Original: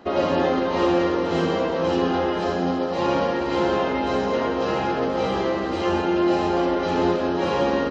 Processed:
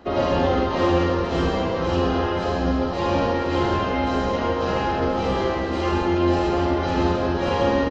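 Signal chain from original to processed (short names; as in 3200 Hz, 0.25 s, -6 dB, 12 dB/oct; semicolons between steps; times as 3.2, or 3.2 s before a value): octaver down 2 oct, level -3 dB; loudspeakers at several distances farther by 16 m -5 dB, 46 m -9 dB; gain -1 dB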